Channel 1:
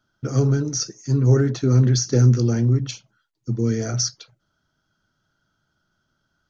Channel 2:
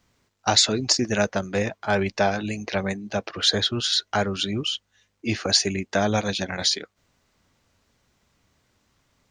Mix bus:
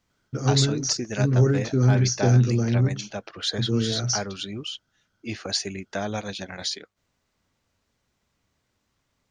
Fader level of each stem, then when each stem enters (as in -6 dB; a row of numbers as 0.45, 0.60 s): -3.0, -7.0 dB; 0.10, 0.00 s